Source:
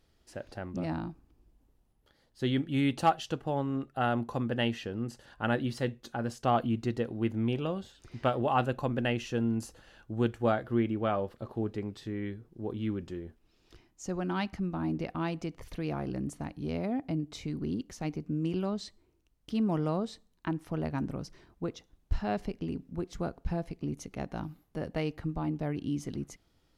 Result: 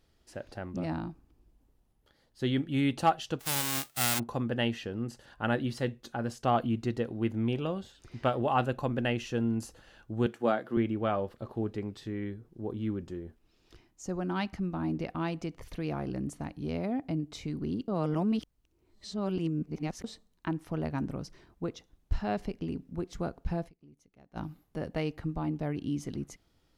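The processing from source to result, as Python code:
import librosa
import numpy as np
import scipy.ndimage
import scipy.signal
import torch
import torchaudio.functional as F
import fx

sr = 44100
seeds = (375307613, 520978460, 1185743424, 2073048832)

y = fx.envelope_flatten(x, sr, power=0.1, at=(3.39, 4.18), fade=0.02)
y = fx.highpass(y, sr, hz=170.0, slope=24, at=(10.26, 10.77))
y = fx.dynamic_eq(y, sr, hz=2800.0, q=0.88, threshold_db=-59.0, ratio=4.0, max_db=-5, at=(12.23, 14.36))
y = fx.edit(y, sr, fx.reverse_span(start_s=17.88, length_s=2.16),
    fx.fade_down_up(start_s=23.67, length_s=0.7, db=-22.0, fade_s=0.14, curve='exp'), tone=tone)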